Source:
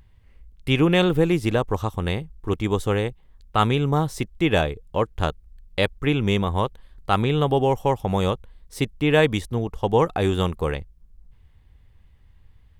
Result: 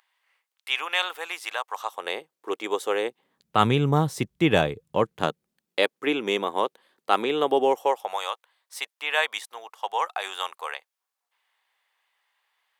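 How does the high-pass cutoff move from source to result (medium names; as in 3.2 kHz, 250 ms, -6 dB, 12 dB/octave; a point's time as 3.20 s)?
high-pass 24 dB/octave
1.71 s 830 Hz
2.18 s 400 Hz
2.94 s 400 Hz
3.66 s 110 Hz
4.85 s 110 Hz
5.83 s 300 Hz
7.69 s 300 Hz
8.21 s 770 Hz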